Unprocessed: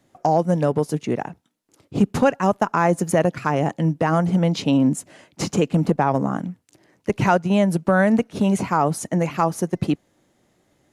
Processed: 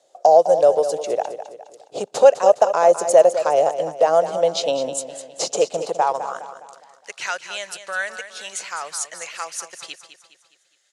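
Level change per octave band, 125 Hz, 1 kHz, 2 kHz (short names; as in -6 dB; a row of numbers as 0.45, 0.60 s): -24.0, +1.5, -1.5 dB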